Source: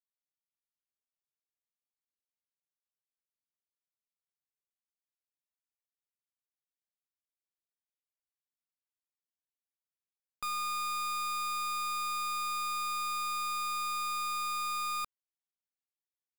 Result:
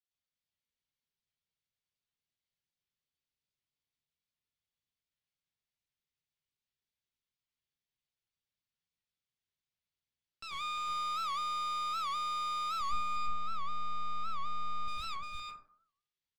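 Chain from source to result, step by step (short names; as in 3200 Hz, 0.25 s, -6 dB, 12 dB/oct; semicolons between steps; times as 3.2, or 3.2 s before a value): octaver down 1 oct, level -3 dB; 12.81–14.88 RIAA curve playback; reverb removal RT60 0.56 s; EQ curve 230 Hz 0 dB, 1100 Hz -5 dB, 3300 Hz +9 dB, 6000 Hz +2 dB, 13000 Hz -19 dB; limiter -32 dBFS, peak gain reduction 6 dB; echo 0.351 s -3.5 dB; plate-style reverb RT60 0.6 s, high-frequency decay 0.35×, pre-delay 85 ms, DRR -6 dB; record warp 78 rpm, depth 160 cents; gain -5.5 dB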